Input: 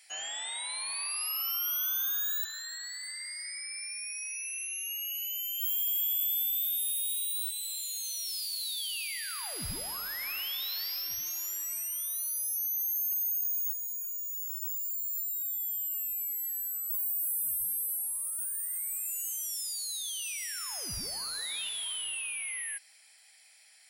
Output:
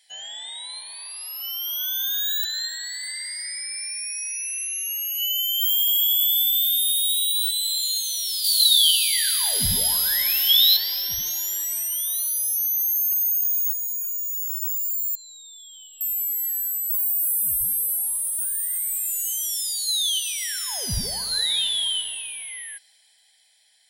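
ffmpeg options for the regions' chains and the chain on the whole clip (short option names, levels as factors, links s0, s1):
-filter_complex "[0:a]asettb=1/sr,asplit=3[s0][s1][s2];[s0]atrim=end=8.444[s3];[s1]atrim=start=8.44:end=10.77,asetpts=PTS-STARTPTS,afade=t=in:d=0.004:c=qsin,afade=t=out:st=2.326:d=0.004:c=qsin,highshelf=f=2600:g=11.5,flanger=delay=19:depth=7:speed=1.4[s4];[s2]atrim=start=10.766[s5];[s3][s4]acrossfade=d=0.004:c1=hsin:c2=qsin[s6];[s6][s5]acrossfade=d=0.004:c1=qsin:c2=hsin,asettb=1/sr,asplit=3[s7][s8][s9];[s7]atrim=end=15.154[s10];[s8]atrim=start=15.15:end=16.01,asetpts=PTS-STARTPTS,afade=t=in:d=0.004:c=qsin,afade=t=out:st=0.856:d=0.004:c=qsin,lowpass=f=6200:w=0.5412,lowpass=f=6200:w=1.3066,bandreject=f=550:w=14[s11];[s9]atrim=start=16.006[s12];[s10][s11]acrossfade=d=0.004:c1=hsin:c2=qsin[s13];[s13][s12]acrossfade=d=0.004:c1=qsin:c2=hsin,lowshelf=f=280:g=8.5,dynaudnorm=f=200:g=21:m=4.22,superequalizer=6b=0.282:10b=0.282:12b=0.562:13b=2.51,volume=0.668"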